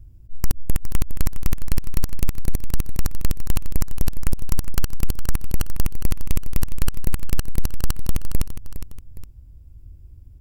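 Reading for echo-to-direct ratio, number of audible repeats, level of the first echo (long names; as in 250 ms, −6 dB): −10.5 dB, 2, −11.0 dB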